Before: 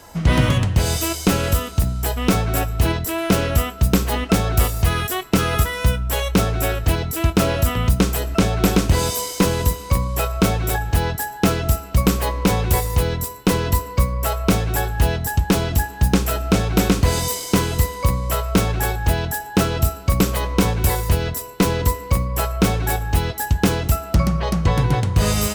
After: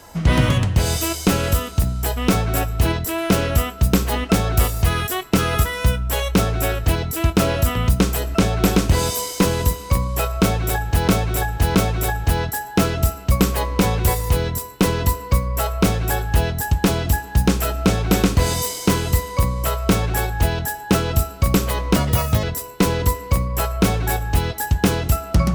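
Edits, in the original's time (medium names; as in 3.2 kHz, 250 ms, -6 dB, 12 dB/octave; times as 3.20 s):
10.41–11.08 s: loop, 3 plays
20.62–21.23 s: speed 129%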